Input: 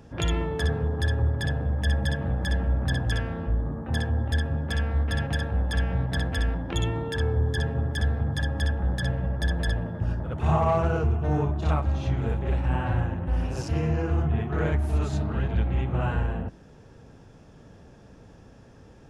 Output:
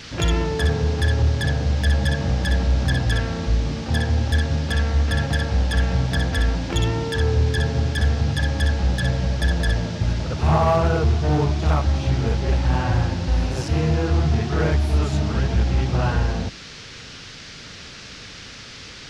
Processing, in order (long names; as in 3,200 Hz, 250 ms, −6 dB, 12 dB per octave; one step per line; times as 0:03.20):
noise in a band 1,200–5,700 Hz −46 dBFS
hard clipping −17 dBFS, distortion −26 dB
level +5.5 dB